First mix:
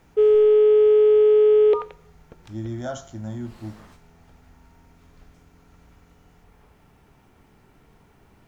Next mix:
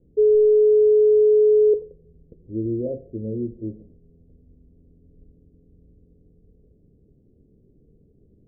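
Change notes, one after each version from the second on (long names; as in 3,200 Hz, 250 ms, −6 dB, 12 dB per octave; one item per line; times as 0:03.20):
speech: remove phaser with its sweep stopped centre 1,100 Hz, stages 4
master: add Butterworth low-pass 510 Hz 48 dB per octave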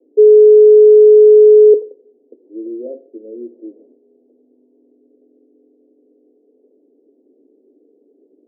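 background +9.5 dB
master: add Butterworth high-pass 260 Hz 72 dB per octave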